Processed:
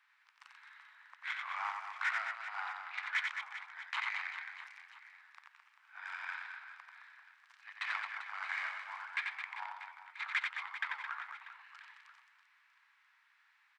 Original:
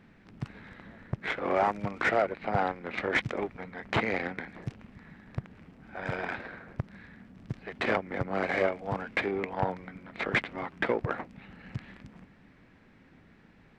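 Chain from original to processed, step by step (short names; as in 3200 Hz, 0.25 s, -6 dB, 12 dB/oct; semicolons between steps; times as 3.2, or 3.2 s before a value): steep high-pass 960 Hz 48 dB/oct; on a send: reverse bouncing-ball echo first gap 90 ms, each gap 1.4×, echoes 5; on the sum: gain -6.5 dB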